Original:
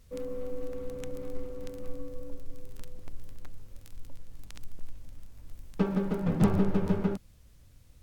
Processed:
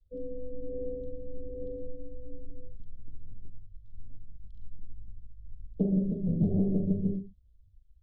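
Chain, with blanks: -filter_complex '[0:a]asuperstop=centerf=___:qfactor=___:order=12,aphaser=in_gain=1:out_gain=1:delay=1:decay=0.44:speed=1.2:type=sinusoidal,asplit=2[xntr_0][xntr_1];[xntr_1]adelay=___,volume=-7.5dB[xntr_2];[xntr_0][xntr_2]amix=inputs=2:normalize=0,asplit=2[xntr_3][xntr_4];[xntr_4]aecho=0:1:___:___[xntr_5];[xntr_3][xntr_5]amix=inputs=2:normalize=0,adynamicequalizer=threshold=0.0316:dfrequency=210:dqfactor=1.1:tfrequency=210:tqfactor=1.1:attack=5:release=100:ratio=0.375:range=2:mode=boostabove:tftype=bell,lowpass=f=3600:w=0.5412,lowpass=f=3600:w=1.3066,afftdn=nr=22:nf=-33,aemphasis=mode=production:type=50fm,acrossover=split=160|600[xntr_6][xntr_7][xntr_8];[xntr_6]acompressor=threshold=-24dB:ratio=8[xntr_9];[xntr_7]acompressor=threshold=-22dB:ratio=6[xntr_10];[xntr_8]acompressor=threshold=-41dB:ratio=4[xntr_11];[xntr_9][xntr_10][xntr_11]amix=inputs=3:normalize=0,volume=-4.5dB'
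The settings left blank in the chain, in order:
1500, 0.64, 42, 118, 0.237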